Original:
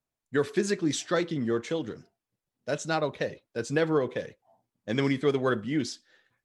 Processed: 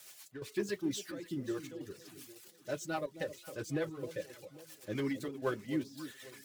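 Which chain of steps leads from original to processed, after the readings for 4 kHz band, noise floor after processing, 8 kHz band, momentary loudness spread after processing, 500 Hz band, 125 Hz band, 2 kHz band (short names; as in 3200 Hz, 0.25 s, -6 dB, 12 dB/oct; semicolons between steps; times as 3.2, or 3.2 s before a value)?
-10.0 dB, -60 dBFS, -8.5 dB, 14 LU, -11.0 dB, -10.5 dB, -10.5 dB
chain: switching spikes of -27 dBFS; reverb removal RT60 0.74 s; high shelf 6800 Hz -11.5 dB; in parallel at -4 dB: overloaded stage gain 24.5 dB; on the sum: rotary speaker horn 8 Hz; step gate "xx.xxxxx.x" 108 bpm -12 dB; flange 0.48 Hz, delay 2.1 ms, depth 1.5 ms, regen -73%; notch comb 230 Hz; on a send: echo with dull and thin repeats by turns 0.267 s, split 850 Hz, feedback 62%, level -11.5 dB; on the sum: gain -4 dB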